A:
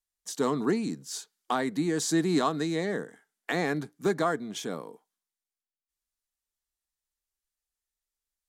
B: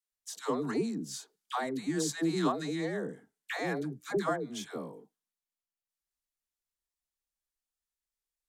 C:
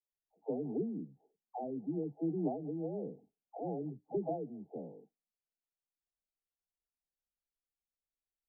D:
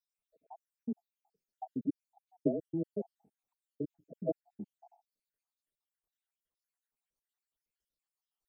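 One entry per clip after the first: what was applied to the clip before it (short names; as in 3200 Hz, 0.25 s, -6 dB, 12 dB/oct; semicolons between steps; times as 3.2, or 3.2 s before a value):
dispersion lows, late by 0.118 s, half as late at 610 Hz; gain -4.5 dB
Chebyshev low-pass 840 Hz, order 8; gain -4 dB
random spectral dropouts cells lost 78%; gain +6.5 dB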